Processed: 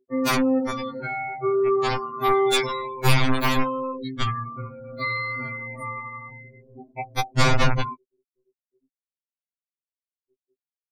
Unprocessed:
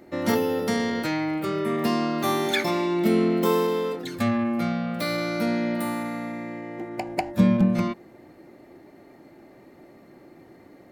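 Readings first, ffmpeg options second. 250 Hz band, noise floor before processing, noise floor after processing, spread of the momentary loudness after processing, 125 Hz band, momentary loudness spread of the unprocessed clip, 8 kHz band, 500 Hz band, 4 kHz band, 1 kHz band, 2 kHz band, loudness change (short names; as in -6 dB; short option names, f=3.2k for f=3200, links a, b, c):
-5.0 dB, -51 dBFS, under -85 dBFS, 15 LU, +2.5 dB, 10 LU, +4.0 dB, 0.0 dB, +4.0 dB, +3.5 dB, +4.0 dB, +0.5 dB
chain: -af "aeval=exprs='(mod(5.62*val(0)+1,2)-1)/5.62':c=same,afftfilt=real='re*gte(hypot(re,im),0.0501)':imag='im*gte(hypot(re,im),0.0501)':win_size=1024:overlap=0.75,aecho=1:1:6.9:0.31,asubboost=boost=6:cutoff=77,afftfilt=real='re*2.45*eq(mod(b,6),0)':imag='im*2.45*eq(mod(b,6),0)':win_size=2048:overlap=0.75,volume=4.5dB"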